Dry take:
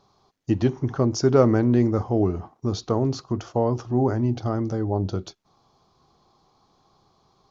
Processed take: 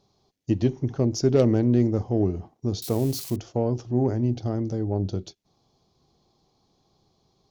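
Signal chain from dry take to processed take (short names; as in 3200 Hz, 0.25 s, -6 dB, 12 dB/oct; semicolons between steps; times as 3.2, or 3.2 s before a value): 2.82–3.36 switching spikes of -24.5 dBFS; added harmonics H 4 -19 dB, 6 -22 dB, 7 -34 dB, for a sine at -3 dBFS; bell 1200 Hz -12.5 dB 1.2 oct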